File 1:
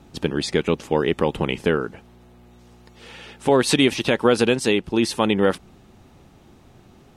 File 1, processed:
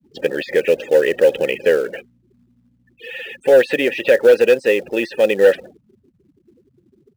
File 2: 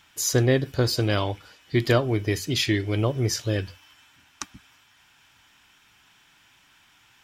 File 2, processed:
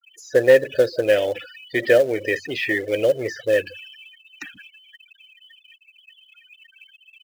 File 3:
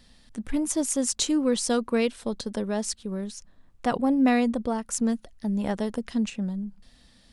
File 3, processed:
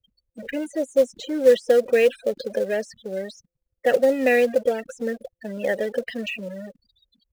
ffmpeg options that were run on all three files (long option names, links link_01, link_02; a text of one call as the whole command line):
ffmpeg -i in.wav -filter_complex "[0:a]aeval=exprs='val(0)+0.5*0.0398*sgn(val(0))':channel_layout=same,agate=range=-33dB:threshold=-28dB:ratio=3:detection=peak,apsyclip=8dB,tiltshelf=frequency=1500:gain=-4.5,acrossover=split=2000[link_01][link_02];[link_02]acompressor=threshold=-26dB:ratio=5[link_03];[link_01][link_03]amix=inputs=2:normalize=0,afftfilt=real='re*gte(hypot(re,im),0.0631)':imag='im*gte(hypot(re,im),0.0631)':win_size=1024:overlap=0.75,asplit=3[link_04][link_05][link_06];[link_04]bandpass=frequency=530:width_type=q:width=8,volume=0dB[link_07];[link_05]bandpass=frequency=1840:width_type=q:width=8,volume=-6dB[link_08];[link_06]bandpass=frequency=2480:width_type=q:width=8,volume=-9dB[link_09];[link_07][link_08][link_09]amix=inputs=3:normalize=0,asplit=2[link_10][link_11];[link_11]acrusher=bits=3:mode=log:mix=0:aa=0.000001,volume=-6dB[link_12];[link_10][link_12]amix=inputs=2:normalize=0,volume=11dB,asoftclip=hard,volume=-11dB,volume=6dB" out.wav